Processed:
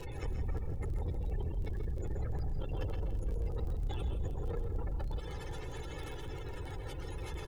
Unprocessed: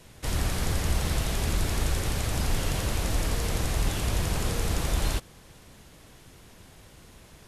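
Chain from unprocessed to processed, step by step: spectral gate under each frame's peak -20 dB strong; comb 2.3 ms, depth 84%; peak limiter -31.5 dBFS, peak gain reduction 19.5 dB; compression 3:1, threshold -40 dBFS, peak gain reduction 5.5 dB; crackle 23 per s -49 dBFS; saturation -39.5 dBFS, distortion -17 dB; delay 130 ms -10 dB; bit-crushed delay 165 ms, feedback 55%, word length 12-bit, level -12 dB; trim +8.5 dB

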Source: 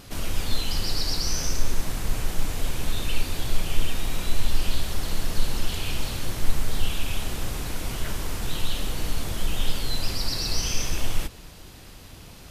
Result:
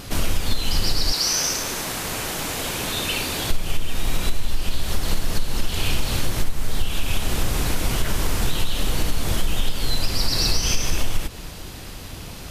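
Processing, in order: 1.11–3.49 s: high-pass 600 Hz -> 220 Hz 6 dB/octave; compression 6:1, threshold -23 dBFS, peak gain reduction 13 dB; trim +9 dB

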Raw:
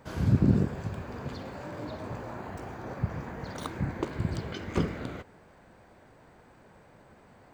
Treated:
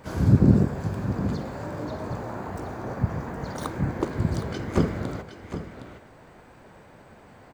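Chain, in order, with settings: delay 764 ms -11 dB; harmony voices +7 st -13 dB; dynamic bell 2.8 kHz, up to -7 dB, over -57 dBFS, Q 1.2; trim +5.5 dB

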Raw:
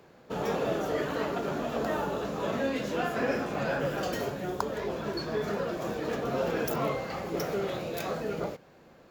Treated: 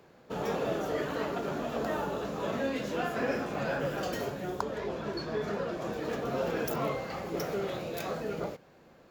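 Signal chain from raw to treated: 4.60–5.93 s: treble shelf 11 kHz -12 dB; trim -2 dB

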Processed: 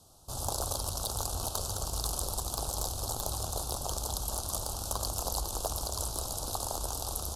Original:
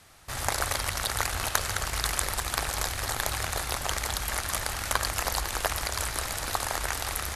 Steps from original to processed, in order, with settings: saturation -15.5 dBFS, distortion -15 dB; Butterworth band-stop 2 kHz, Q 0.61; trim -1.5 dB

